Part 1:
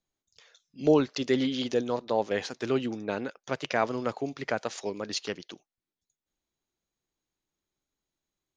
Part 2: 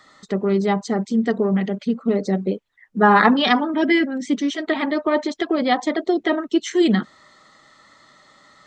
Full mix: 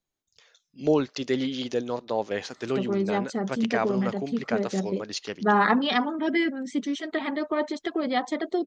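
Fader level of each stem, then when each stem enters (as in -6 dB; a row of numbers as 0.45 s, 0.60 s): -0.5 dB, -7.0 dB; 0.00 s, 2.45 s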